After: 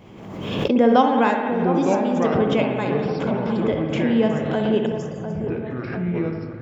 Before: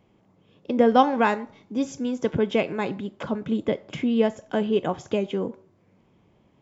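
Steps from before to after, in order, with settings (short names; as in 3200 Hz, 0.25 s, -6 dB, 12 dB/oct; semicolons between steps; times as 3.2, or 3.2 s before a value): echoes that change speed 0.589 s, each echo -5 st, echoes 2, each echo -6 dB; 4.86–5.47 brick-wall FIR band-stop 190–4500 Hz; dark delay 0.701 s, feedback 52%, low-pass 1400 Hz, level -9 dB; on a send at -3.5 dB: reverb RT60 1.5 s, pre-delay 56 ms; on the sum: backwards sustainer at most 42 dB/s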